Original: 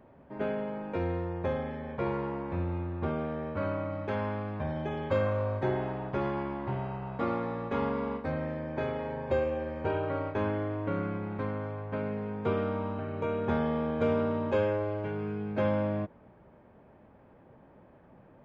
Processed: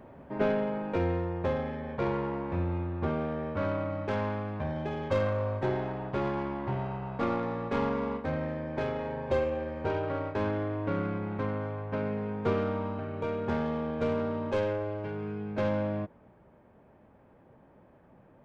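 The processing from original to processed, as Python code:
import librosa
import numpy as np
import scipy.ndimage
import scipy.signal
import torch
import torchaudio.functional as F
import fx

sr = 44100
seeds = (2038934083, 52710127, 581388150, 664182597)

y = fx.tracing_dist(x, sr, depth_ms=0.082)
y = fx.rider(y, sr, range_db=10, speed_s=2.0)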